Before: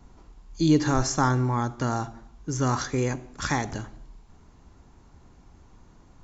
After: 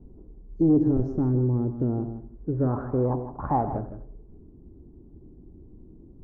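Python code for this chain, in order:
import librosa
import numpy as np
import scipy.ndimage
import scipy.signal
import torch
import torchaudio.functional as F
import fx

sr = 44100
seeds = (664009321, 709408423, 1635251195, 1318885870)

p1 = fx.peak_eq(x, sr, hz=1600.0, db=-8.0, octaves=2.7)
p2 = np.clip(p1, -10.0 ** (-20.5 / 20.0), 10.0 ** (-20.5 / 20.0))
p3 = fx.filter_sweep_lowpass(p2, sr, from_hz=6200.0, to_hz=350.0, start_s=1.08, end_s=4.43, q=3.0)
p4 = 10.0 ** (-36.0 / 20.0) * np.tanh(p3 / 10.0 ** (-36.0 / 20.0))
p5 = p3 + (p4 * librosa.db_to_amplitude(-7.0))
p6 = fx.filter_sweep_lowpass(p5, sr, from_hz=400.0, to_hz=3500.0, start_s=2.32, end_s=4.75, q=2.1)
y = p6 + fx.echo_single(p6, sr, ms=160, db=-11.5, dry=0)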